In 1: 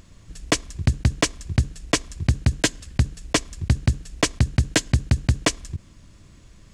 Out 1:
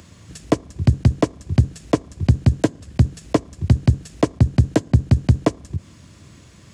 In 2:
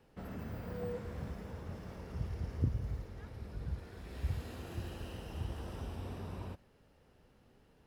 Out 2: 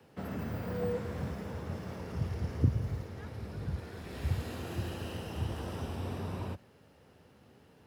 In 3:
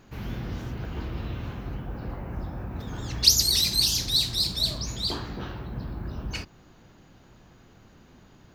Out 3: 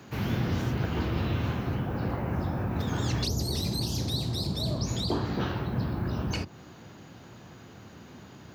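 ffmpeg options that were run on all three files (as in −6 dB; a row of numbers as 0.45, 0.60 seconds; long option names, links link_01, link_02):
-filter_complex "[0:a]highpass=frequency=76:width=0.5412,highpass=frequency=76:width=1.3066,acrossover=split=130|960[link_01][link_02][link_03];[link_03]acompressor=threshold=-41dB:ratio=8[link_04];[link_01][link_02][link_04]amix=inputs=3:normalize=0,volume=6.5dB"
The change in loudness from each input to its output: +3.5, +5.0, −4.0 LU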